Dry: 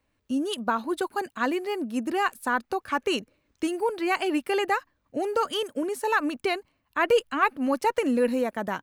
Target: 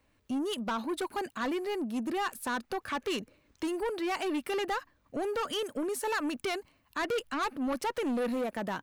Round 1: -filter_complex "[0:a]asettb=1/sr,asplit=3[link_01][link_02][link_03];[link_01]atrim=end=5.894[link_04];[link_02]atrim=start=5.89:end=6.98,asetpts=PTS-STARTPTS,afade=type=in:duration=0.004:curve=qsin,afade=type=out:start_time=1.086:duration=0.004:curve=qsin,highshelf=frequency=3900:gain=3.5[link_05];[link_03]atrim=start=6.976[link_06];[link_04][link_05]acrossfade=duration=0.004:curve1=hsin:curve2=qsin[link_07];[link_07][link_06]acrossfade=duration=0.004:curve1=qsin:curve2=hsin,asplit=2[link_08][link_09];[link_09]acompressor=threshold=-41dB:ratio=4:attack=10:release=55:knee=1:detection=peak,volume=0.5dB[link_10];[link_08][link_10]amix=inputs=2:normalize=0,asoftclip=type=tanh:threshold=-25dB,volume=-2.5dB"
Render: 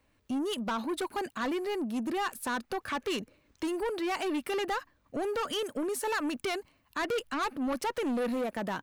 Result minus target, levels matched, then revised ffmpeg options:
downward compressor: peak gain reduction −5.5 dB
-filter_complex "[0:a]asettb=1/sr,asplit=3[link_01][link_02][link_03];[link_01]atrim=end=5.894[link_04];[link_02]atrim=start=5.89:end=6.98,asetpts=PTS-STARTPTS,afade=type=in:duration=0.004:curve=qsin,afade=type=out:start_time=1.086:duration=0.004:curve=qsin,highshelf=frequency=3900:gain=3.5[link_05];[link_03]atrim=start=6.976[link_06];[link_04][link_05]acrossfade=duration=0.004:curve1=hsin:curve2=qsin[link_07];[link_07][link_06]acrossfade=duration=0.004:curve1=qsin:curve2=hsin,asplit=2[link_08][link_09];[link_09]acompressor=threshold=-48.5dB:ratio=4:attack=10:release=55:knee=1:detection=peak,volume=0.5dB[link_10];[link_08][link_10]amix=inputs=2:normalize=0,asoftclip=type=tanh:threshold=-25dB,volume=-2.5dB"

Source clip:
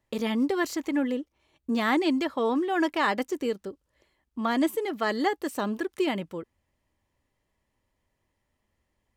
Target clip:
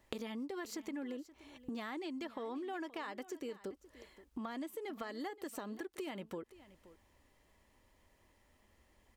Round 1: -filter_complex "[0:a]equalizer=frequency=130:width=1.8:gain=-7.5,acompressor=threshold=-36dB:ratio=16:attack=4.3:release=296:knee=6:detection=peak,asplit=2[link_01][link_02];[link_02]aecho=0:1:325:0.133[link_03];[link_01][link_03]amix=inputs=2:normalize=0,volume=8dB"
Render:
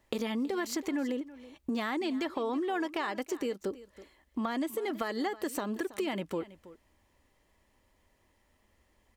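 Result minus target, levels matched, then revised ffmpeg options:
downward compressor: peak gain reduction −10 dB; echo 200 ms early
-filter_complex "[0:a]equalizer=frequency=130:width=1.8:gain=-7.5,acompressor=threshold=-46.5dB:ratio=16:attack=4.3:release=296:knee=6:detection=peak,asplit=2[link_01][link_02];[link_02]aecho=0:1:525:0.133[link_03];[link_01][link_03]amix=inputs=2:normalize=0,volume=8dB"

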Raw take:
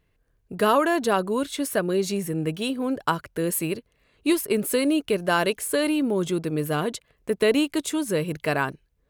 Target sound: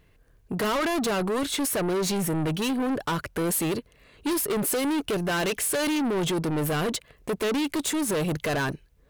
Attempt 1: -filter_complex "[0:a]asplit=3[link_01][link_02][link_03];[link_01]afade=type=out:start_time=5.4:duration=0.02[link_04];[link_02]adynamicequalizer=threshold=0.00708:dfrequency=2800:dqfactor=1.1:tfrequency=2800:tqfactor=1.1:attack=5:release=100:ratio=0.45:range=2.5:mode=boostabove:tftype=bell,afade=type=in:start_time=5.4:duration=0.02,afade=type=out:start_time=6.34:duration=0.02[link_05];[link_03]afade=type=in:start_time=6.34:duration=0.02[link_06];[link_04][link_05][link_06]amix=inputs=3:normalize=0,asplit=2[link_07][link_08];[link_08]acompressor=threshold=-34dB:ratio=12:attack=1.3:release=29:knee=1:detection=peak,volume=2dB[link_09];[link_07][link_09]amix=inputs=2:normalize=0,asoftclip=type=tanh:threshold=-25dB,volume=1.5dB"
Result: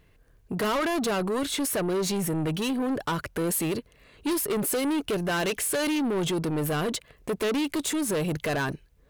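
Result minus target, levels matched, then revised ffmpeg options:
downward compressor: peak gain reduction +11 dB
-filter_complex "[0:a]asplit=3[link_01][link_02][link_03];[link_01]afade=type=out:start_time=5.4:duration=0.02[link_04];[link_02]adynamicequalizer=threshold=0.00708:dfrequency=2800:dqfactor=1.1:tfrequency=2800:tqfactor=1.1:attack=5:release=100:ratio=0.45:range=2.5:mode=boostabove:tftype=bell,afade=type=in:start_time=5.4:duration=0.02,afade=type=out:start_time=6.34:duration=0.02[link_05];[link_03]afade=type=in:start_time=6.34:duration=0.02[link_06];[link_04][link_05][link_06]amix=inputs=3:normalize=0,asplit=2[link_07][link_08];[link_08]acompressor=threshold=-22dB:ratio=12:attack=1.3:release=29:knee=1:detection=peak,volume=2dB[link_09];[link_07][link_09]amix=inputs=2:normalize=0,asoftclip=type=tanh:threshold=-25dB,volume=1.5dB"

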